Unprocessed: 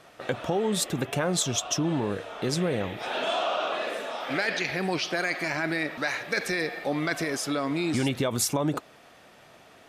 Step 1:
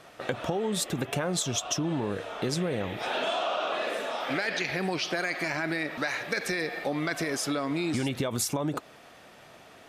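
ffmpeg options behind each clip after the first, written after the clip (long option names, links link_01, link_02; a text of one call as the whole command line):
ffmpeg -i in.wav -af "acompressor=threshold=-27dB:ratio=6,volume=1.5dB" out.wav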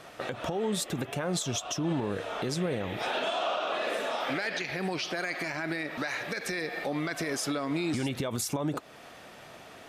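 ffmpeg -i in.wav -af "alimiter=level_in=0.5dB:limit=-24dB:level=0:latency=1:release=254,volume=-0.5dB,volume=3dB" out.wav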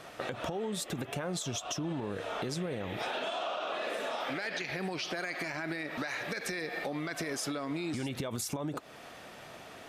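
ffmpeg -i in.wav -af "acompressor=threshold=-32dB:ratio=6" out.wav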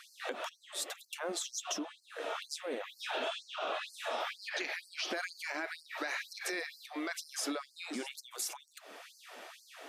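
ffmpeg -i in.wav -af "afftfilt=real='re*gte(b*sr/1024,210*pow(4300/210,0.5+0.5*sin(2*PI*2.1*pts/sr)))':imag='im*gte(b*sr/1024,210*pow(4300/210,0.5+0.5*sin(2*PI*2.1*pts/sr)))':win_size=1024:overlap=0.75" out.wav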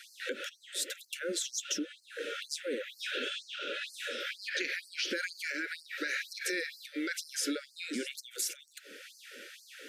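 ffmpeg -i in.wav -af "asuperstop=centerf=880:order=20:qfactor=1.1,volume=3.5dB" out.wav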